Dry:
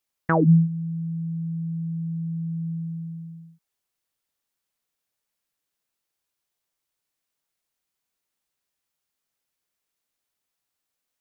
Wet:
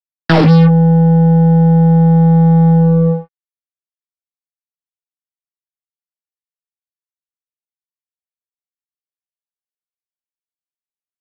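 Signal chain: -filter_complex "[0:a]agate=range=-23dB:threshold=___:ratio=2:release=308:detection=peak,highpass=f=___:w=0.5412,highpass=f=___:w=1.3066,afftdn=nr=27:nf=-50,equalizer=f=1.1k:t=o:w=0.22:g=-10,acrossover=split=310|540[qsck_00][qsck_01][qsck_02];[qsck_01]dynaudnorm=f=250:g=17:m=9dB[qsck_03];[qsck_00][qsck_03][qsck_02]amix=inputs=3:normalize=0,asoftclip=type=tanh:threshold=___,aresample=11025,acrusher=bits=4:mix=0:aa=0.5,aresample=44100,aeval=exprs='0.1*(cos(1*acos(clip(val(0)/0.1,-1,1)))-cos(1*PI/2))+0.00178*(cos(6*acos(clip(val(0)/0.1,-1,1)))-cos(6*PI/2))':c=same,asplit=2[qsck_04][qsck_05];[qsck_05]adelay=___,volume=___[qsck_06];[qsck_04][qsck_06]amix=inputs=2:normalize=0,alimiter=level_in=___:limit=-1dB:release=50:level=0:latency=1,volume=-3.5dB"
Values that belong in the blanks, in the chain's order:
-34dB, 73, 73, -20.5dB, 18, -7dB, 28dB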